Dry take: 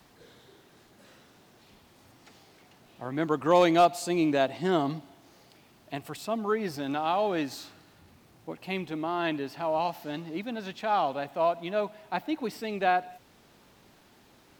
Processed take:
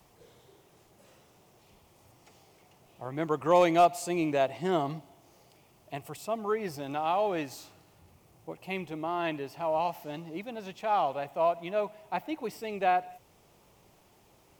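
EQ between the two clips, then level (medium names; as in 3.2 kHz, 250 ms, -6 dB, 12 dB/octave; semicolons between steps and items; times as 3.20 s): fifteen-band graphic EQ 250 Hz -9 dB, 1.6 kHz -10 dB, 4 kHz -8 dB; dynamic bell 1.8 kHz, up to +5 dB, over -48 dBFS, Q 1.3; 0.0 dB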